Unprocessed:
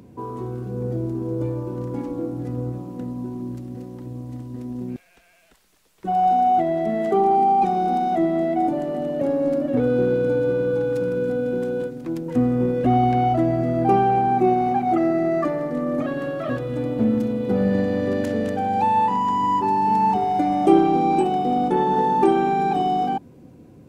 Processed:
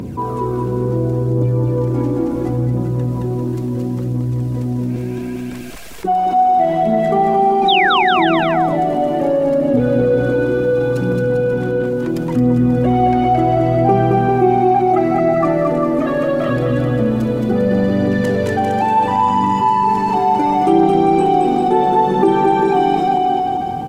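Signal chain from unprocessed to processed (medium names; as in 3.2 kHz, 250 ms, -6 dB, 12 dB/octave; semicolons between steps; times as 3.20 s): 11.22–11.87 s: tone controls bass +1 dB, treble -9 dB; phaser 0.72 Hz, delay 3.4 ms, feedback 48%; 7.68–8.04 s: painted sound fall 750–4000 Hz -17 dBFS; bouncing-ball echo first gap 220 ms, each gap 0.8×, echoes 5; level flattener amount 50%; trim -1 dB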